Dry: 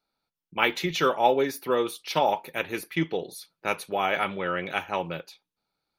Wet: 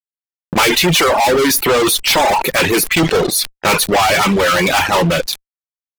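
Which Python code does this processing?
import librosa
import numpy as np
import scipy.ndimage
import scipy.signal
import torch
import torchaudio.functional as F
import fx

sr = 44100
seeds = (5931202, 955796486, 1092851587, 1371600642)

y = fx.fuzz(x, sr, gain_db=43.0, gate_db=-49.0)
y = fx.dereverb_blind(y, sr, rt60_s=0.81)
y = fx.sustainer(y, sr, db_per_s=66.0)
y = y * 10.0 ** (3.0 / 20.0)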